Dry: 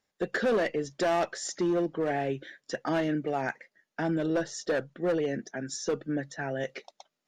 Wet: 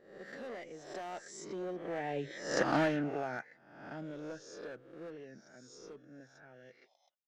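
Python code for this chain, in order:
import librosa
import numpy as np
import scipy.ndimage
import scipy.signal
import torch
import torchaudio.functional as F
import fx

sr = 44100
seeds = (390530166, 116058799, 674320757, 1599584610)

y = fx.spec_swells(x, sr, rise_s=0.76)
y = fx.doppler_pass(y, sr, speed_mps=17, closest_m=3.7, pass_at_s=2.63)
y = fx.doppler_dist(y, sr, depth_ms=0.13)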